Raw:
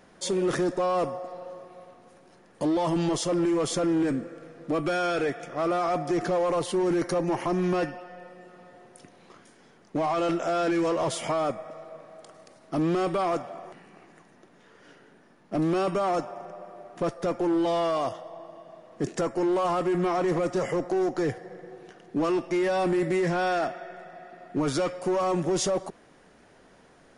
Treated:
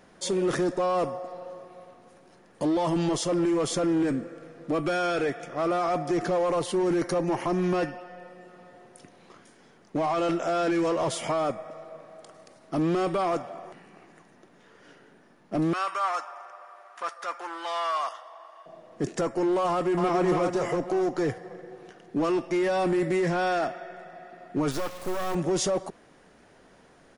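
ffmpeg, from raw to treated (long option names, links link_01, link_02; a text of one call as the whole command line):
ffmpeg -i in.wav -filter_complex "[0:a]asettb=1/sr,asplit=3[link_01][link_02][link_03];[link_01]atrim=end=15.734[link_04];[link_02]atrim=start=15.73:end=18.66,asetpts=PTS-STARTPTS,afade=type=in:duration=0.004:curve=qsin,afade=type=out:start_time=2.926:duration=0.004:curve=qsin,highpass=frequency=1200:width_type=q:width=2[link_05];[link_03]atrim=start=18.656[link_06];[link_04][link_05]acrossfade=duration=0.004:curve1=hsin:curve2=qsin[link_07];[link_07][link_06]acrossfade=duration=0.004:curve1=qsin:curve2=hsin,asplit=2[link_08][link_09];[link_09]afade=type=in:start_time=19.69:duration=0.01,afade=type=out:start_time=20.21:duration=0.01,aecho=0:1:280|560|840|1120|1400|1680:0.630957|0.315479|0.157739|0.0788697|0.0394348|0.0197174[link_10];[link_08][link_10]amix=inputs=2:normalize=0,asettb=1/sr,asplit=3[link_11][link_12][link_13];[link_11]atrim=end=24.714[link_14];[link_12]atrim=start=24.71:end=25.35,asetpts=PTS-STARTPTS,afade=type=in:duration=0.004:curve=qsin,afade=type=out:start_time=0.636:duration=0.004:curve=qsin,acrusher=bits=4:dc=4:mix=0:aa=0.000001[link_15];[link_13]atrim=start=25.346[link_16];[link_14][link_15]acrossfade=duration=0.004:curve1=hsin:curve2=qsin[link_17];[link_17][link_16]acrossfade=duration=0.004:curve1=qsin:curve2=hsin" out.wav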